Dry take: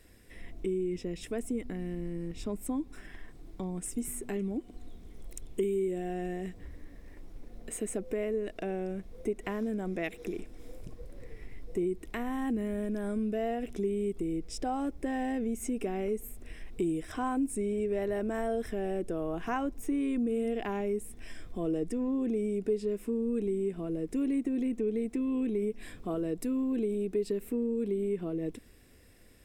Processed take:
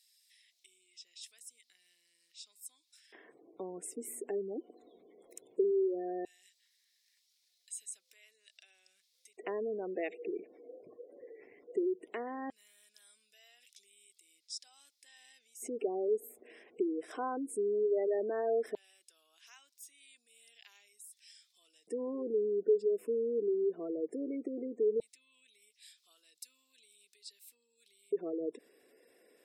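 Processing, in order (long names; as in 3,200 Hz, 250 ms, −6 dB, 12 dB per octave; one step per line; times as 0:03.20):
auto-filter high-pass square 0.16 Hz 430–4,300 Hz
gate on every frequency bin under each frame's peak −25 dB strong
level −5 dB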